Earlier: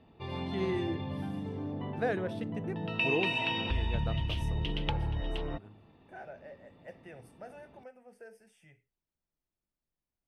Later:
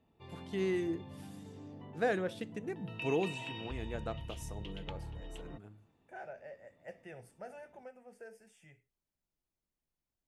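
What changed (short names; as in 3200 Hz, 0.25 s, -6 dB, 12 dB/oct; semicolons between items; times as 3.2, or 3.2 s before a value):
first voice: add high shelf 4900 Hz +6.5 dB; background -12.0 dB; master: add bell 7100 Hz +10.5 dB 0.2 oct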